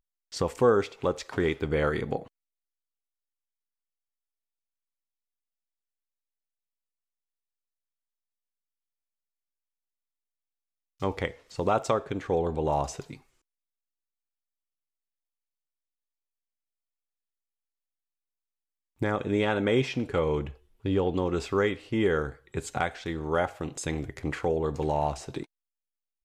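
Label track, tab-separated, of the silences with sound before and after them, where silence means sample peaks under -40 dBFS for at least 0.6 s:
2.270000	11.020000	silence
13.150000	19.010000	silence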